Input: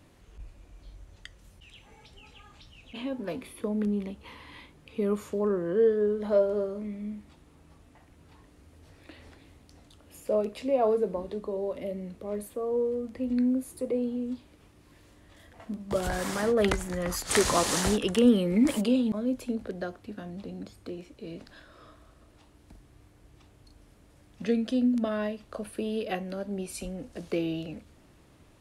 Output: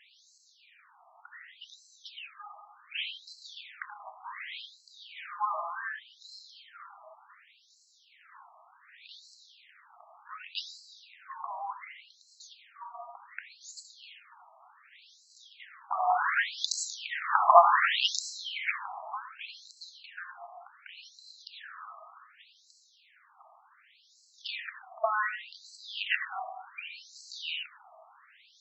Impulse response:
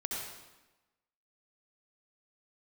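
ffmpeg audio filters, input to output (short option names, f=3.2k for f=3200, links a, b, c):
-filter_complex "[0:a]asplit=2[a][b];[1:a]atrim=start_sample=2205[c];[b][c]afir=irnorm=-1:irlink=0,volume=-2.5dB[d];[a][d]amix=inputs=2:normalize=0,afftfilt=real='re*between(b*sr/1024,890*pow(5700/890,0.5+0.5*sin(2*PI*0.67*pts/sr))/1.41,890*pow(5700/890,0.5+0.5*sin(2*PI*0.67*pts/sr))*1.41)':imag='im*between(b*sr/1024,890*pow(5700/890,0.5+0.5*sin(2*PI*0.67*pts/sr))/1.41,890*pow(5700/890,0.5+0.5*sin(2*PI*0.67*pts/sr))*1.41)':win_size=1024:overlap=0.75,volume=7dB"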